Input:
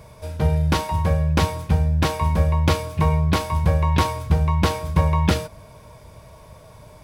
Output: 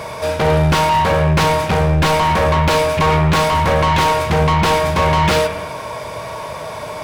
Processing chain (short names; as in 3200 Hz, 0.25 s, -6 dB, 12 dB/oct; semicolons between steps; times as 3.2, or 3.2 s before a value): overdrive pedal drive 34 dB, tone 3400 Hz, clips at -3.5 dBFS; on a send: reverb RT60 1.2 s, pre-delay 45 ms, DRR 8 dB; on the sum: gain -4 dB